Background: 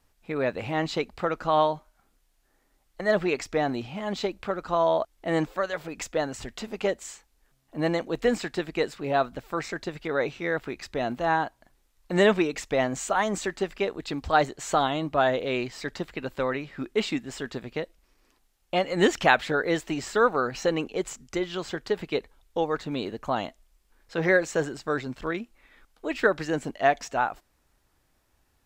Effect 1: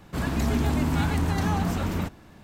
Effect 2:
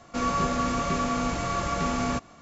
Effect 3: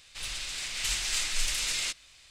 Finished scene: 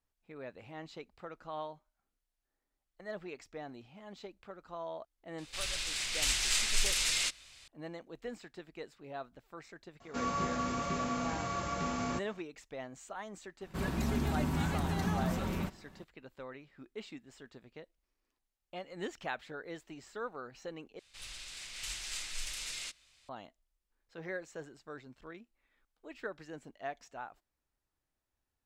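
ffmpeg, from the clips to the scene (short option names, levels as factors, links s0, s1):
-filter_complex "[3:a]asplit=2[s0][s1];[0:a]volume=0.112[s2];[2:a]highpass=62[s3];[1:a]aecho=1:1:5.3:0.36[s4];[s2]asplit=2[s5][s6];[s5]atrim=end=20.994[s7];[s1]atrim=end=2.3,asetpts=PTS-STARTPTS,volume=0.299[s8];[s6]atrim=start=23.286[s9];[s0]atrim=end=2.3,asetpts=PTS-STARTPTS,volume=0.944,afade=t=in:d=0.004:c=hsin,afade=t=out:st=2.296:d=0.004:c=hsin,adelay=5380[s10];[s3]atrim=end=2.41,asetpts=PTS-STARTPTS,volume=0.398,afade=t=in:d=0.004:c=hsin,afade=t=out:st=2.406:d=0.004:c=hsin,adelay=10000[s11];[s4]atrim=end=2.43,asetpts=PTS-STARTPTS,volume=0.398,afade=t=in:d=0.004:c=hsin,afade=t=out:st=2.426:d=0.004:c=hsin,adelay=13610[s12];[s7][s8]acrossfade=d=0.004:c1=hsin:c2=hsin[s13];[s13][s9]acrossfade=d=0.004:c1=hsin:c2=hsin[s14];[s14][s10][s11][s12]amix=inputs=4:normalize=0"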